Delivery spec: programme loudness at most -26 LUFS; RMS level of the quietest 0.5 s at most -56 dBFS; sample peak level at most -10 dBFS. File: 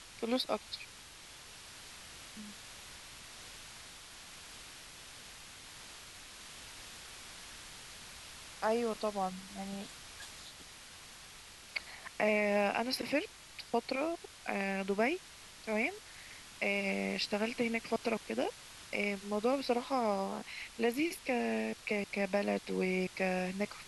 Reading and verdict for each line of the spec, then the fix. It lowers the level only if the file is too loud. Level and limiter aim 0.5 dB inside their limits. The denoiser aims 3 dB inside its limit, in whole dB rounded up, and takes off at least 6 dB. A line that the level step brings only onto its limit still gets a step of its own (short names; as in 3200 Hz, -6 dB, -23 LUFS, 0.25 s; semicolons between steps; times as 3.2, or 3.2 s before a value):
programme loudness -35.5 LUFS: OK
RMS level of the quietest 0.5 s -53 dBFS: fail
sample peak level -18.0 dBFS: OK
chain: denoiser 6 dB, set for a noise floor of -53 dBFS